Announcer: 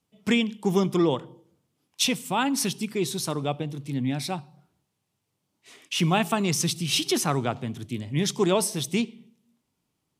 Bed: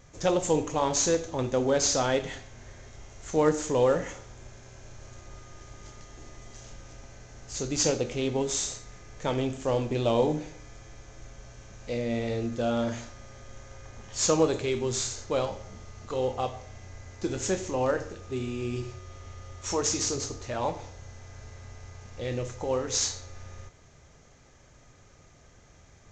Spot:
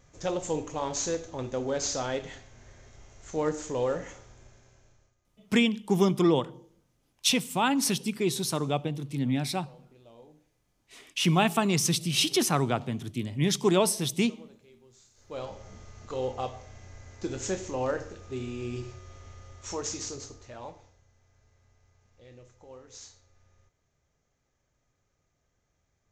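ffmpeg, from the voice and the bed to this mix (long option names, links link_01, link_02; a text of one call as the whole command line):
ffmpeg -i stem1.wav -i stem2.wav -filter_complex "[0:a]adelay=5250,volume=-0.5dB[link_01];[1:a]volume=20.5dB,afade=type=out:start_time=4.24:duration=0.91:silence=0.0668344,afade=type=in:start_time=15.14:duration=0.56:silence=0.0501187,afade=type=out:start_time=19.08:duration=1.98:silence=0.141254[link_02];[link_01][link_02]amix=inputs=2:normalize=0" out.wav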